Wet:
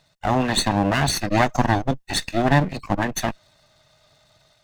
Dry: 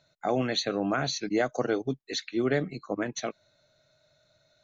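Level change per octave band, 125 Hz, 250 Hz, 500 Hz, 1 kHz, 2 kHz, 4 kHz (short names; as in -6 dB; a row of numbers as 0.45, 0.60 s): +14.0, +7.0, +3.5, +12.5, +9.5, +7.0 dB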